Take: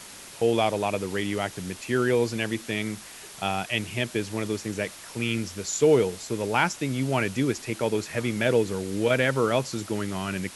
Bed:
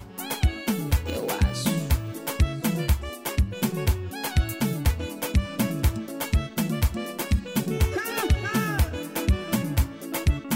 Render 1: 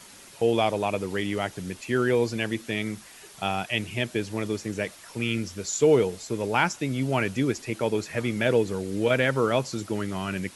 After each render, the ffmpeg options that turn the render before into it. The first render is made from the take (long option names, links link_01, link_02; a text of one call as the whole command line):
ffmpeg -i in.wav -af "afftdn=noise_reduction=6:noise_floor=-44" out.wav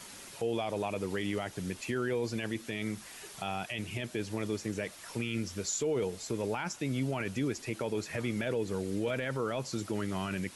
ffmpeg -i in.wav -af "acompressor=threshold=-36dB:ratio=1.5,alimiter=limit=-23.5dB:level=0:latency=1:release=12" out.wav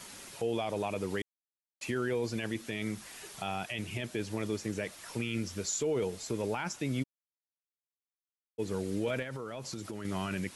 ffmpeg -i in.wav -filter_complex "[0:a]asplit=3[link_01][link_02][link_03];[link_01]afade=type=out:start_time=7.02:duration=0.02[link_04];[link_02]acrusher=bits=2:mix=0:aa=0.5,afade=type=in:start_time=7.02:duration=0.02,afade=type=out:start_time=8.58:duration=0.02[link_05];[link_03]afade=type=in:start_time=8.58:duration=0.02[link_06];[link_04][link_05][link_06]amix=inputs=3:normalize=0,asettb=1/sr,asplit=3[link_07][link_08][link_09];[link_07]atrim=end=9.224[link_10];[link_08]atrim=start=9.22:end=10.05,asetpts=PTS-STARTPTS,afade=type=in:duration=0.004:curve=qsin,afade=type=out:start_time=0.826:duration=0.004:curve=qsin,acompressor=threshold=-35dB:ratio=10:attack=3.2:release=140:knee=1:detection=peak[link_11];[link_09]atrim=start=10.046[link_12];[link_10][link_11]acrossfade=duration=0.004:curve1=hsin:curve2=qsin[link_13];[link_13][link_12]acrossfade=duration=0.004:curve1=qsin:curve2=hsin,asplit=3[link_14][link_15][link_16];[link_14]atrim=end=1.22,asetpts=PTS-STARTPTS,afade=type=out:start_time=1.216:duration=0.004:curve=hsin[link_17];[link_15]atrim=start=1.22:end=1.81,asetpts=PTS-STARTPTS,volume=0[link_18];[link_16]atrim=start=1.81,asetpts=PTS-STARTPTS,afade=type=in:duration=0.004:curve=hsin[link_19];[link_17][link_18][link_19]concat=n=3:v=0:a=1" out.wav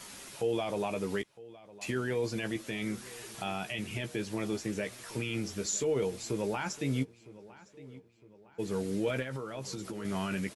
ffmpeg -i in.wav -filter_complex "[0:a]asplit=2[link_01][link_02];[link_02]adelay=15,volume=-8dB[link_03];[link_01][link_03]amix=inputs=2:normalize=0,asplit=2[link_04][link_05];[link_05]adelay=959,lowpass=frequency=3700:poles=1,volume=-19dB,asplit=2[link_06][link_07];[link_07]adelay=959,lowpass=frequency=3700:poles=1,volume=0.47,asplit=2[link_08][link_09];[link_09]adelay=959,lowpass=frequency=3700:poles=1,volume=0.47,asplit=2[link_10][link_11];[link_11]adelay=959,lowpass=frequency=3700:poles=1,volume=0.47[link_12];[link_04][link_06][link_08][link_10][link_12]amix=inputs=5:normalize=0" out.wav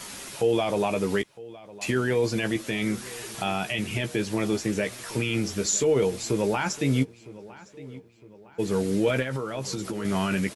ffmpeg -i in.wav -af "volume=8dB" out.wav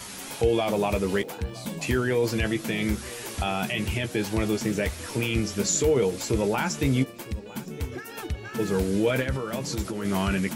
ffmpeg -i in.wav -i bed.wav -filter_complex "[1:a]volume=-10dB[link_01];[0:a][link_01]amix=inputs=2:normalize=0" out.wav